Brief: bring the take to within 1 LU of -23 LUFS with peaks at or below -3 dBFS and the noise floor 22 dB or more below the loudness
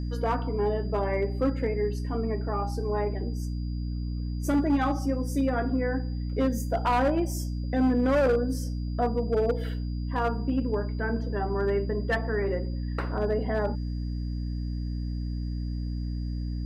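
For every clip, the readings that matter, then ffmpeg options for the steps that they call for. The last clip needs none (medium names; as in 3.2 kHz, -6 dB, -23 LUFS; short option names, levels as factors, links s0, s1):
hum 60 Hz; highest harmonic 300 Hz; hum level -28 dBFS; steady tone 4.8 kHz; tone level -54 dBFS; loudness -28.5 LUFS; peak level -16.0 dBFS; loudness target -23.0 LUFS
-> -af "bandreject=f=60:t=h:w=4,bandreject=f=120:t=h:w=4,bandreject=f=180:t=h:w=4,bandreject=f=240:t=h:w=4,bandreject=f=300:t=h:w=4"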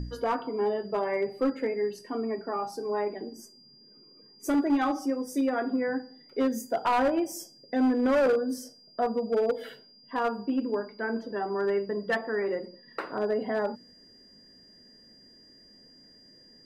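hum not found; steady tone 4.8 kHz; tone level -54 dBFS
-> -af "bandreject=f=4800:w=30"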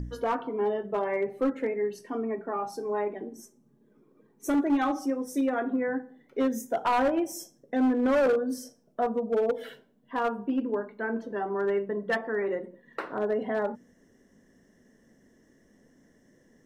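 steady tone not found; loudness -29.0 LUFS; peak level -18.0 dBFS; loudness target -23.0 LUFS
-> -af "volume=2"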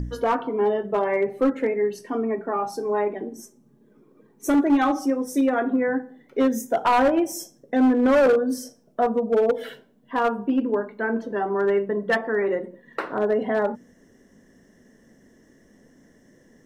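loudness -23.0 LUFS; peak level -12.0 dBFS; noise floor -58 dBFS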